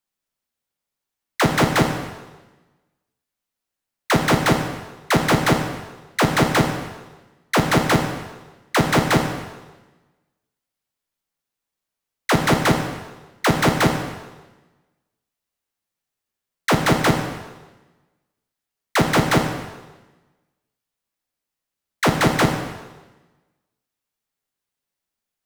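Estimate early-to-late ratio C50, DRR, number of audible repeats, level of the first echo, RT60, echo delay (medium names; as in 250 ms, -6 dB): 6.0 dB, 3.0 dB, no echo, no echo, 1.2 s, no echo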